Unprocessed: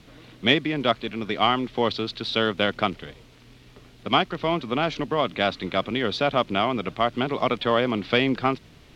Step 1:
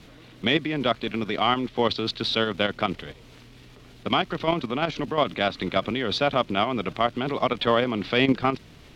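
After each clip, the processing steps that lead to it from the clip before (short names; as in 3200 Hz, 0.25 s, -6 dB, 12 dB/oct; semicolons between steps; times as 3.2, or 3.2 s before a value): level quantiser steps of 11 dB; limiter -16.5 dBFS, peak gain reduction 7.5 dB; gain +6.5 dB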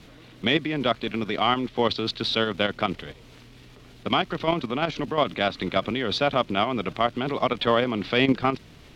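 nothing audible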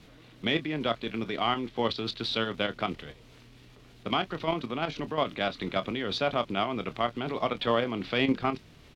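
doubler 26 ms -12.5 dB; gain -5.5 dB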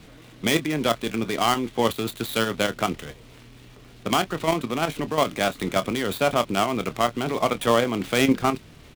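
switching dead time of 0.1 ms; gain +6.5 dB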